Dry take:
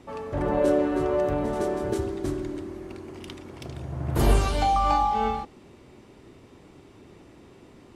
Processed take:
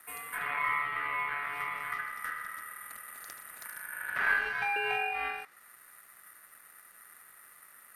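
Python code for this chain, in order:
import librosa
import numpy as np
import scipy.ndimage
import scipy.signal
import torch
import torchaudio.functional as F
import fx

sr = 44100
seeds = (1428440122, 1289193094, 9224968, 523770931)

y = (np.kron(scipy.signal.resample_poly(x, 1, 4), np.eye(4)[0]) * 4)[:len(x)]
y = fx.env_lowpass_down(y, sr, base_hz=1900.0, full_db=-13.5)
y = y * np.sin(2.0 * np.pi * 1600.0 * np.arange(len(y)) / sr)
y = y * librosa.db_to_amplitude(-6.5)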